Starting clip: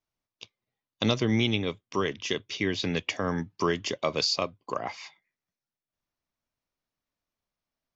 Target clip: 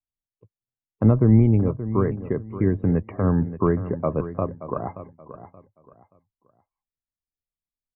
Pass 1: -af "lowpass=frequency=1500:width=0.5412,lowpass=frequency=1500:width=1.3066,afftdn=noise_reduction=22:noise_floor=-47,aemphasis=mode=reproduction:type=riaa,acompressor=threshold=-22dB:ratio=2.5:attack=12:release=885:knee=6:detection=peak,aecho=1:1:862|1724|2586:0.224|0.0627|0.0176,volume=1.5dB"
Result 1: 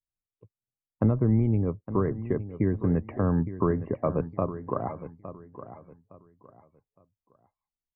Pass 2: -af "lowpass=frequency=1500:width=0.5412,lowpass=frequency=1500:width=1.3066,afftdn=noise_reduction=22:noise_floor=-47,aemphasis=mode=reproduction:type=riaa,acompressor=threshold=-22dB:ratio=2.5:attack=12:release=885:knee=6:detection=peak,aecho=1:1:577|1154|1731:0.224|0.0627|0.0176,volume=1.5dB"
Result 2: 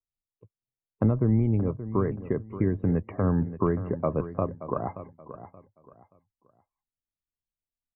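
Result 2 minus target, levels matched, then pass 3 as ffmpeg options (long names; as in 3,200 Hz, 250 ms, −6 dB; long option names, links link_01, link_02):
downward compressor: peak gain reduction +8 dB
-af "lowpass=frequency=1500:width=0.5412,lowpass=frequency=1500:width=1.3066,afftdn=noise_reduction=22:noise_floor=-47,aemphasis=mode=reproduction:type=riaa,aecho=1:1:577|1154|1731:0.224|0.0627|0.0176,volume=1.5dB"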